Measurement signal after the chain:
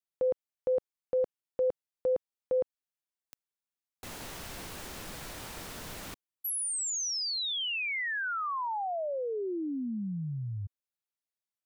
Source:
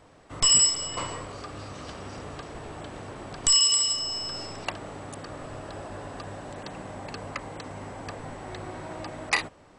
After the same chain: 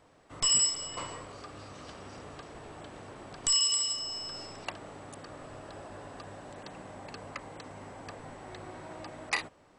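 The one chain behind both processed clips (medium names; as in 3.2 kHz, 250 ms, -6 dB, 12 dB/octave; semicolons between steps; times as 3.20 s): bass shelf 130 Hz -4.5 dB; trim -6 dB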